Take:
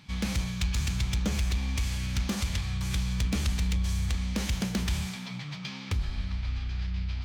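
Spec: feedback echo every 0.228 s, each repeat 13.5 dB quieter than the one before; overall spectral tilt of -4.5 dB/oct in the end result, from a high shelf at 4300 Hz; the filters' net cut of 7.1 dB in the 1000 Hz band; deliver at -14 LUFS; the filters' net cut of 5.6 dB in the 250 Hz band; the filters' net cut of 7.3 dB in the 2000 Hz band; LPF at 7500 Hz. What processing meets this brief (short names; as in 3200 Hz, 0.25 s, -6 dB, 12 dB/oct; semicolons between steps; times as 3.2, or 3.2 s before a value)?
LPF 7500 Hz; bell 250 Hz -8.5 dB; bell 1000 Hz -6.5 dB; bell 2000 Hz -8.5 dB; high shelf 4300 Hz +3 dB; feedback echo 0.228 s, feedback 21%, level -13.5 dB; gain +18 dB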